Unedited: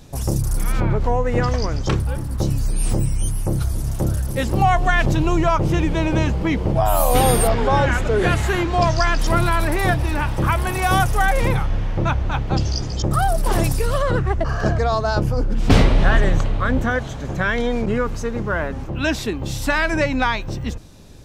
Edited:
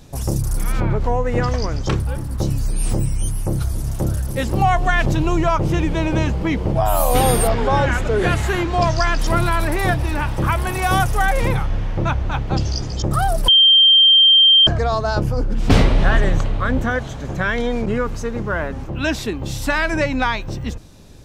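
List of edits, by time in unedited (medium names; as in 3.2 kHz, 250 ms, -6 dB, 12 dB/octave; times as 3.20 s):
13.48–14.67 s: bleep 3.16 kHz -7.5 dBFS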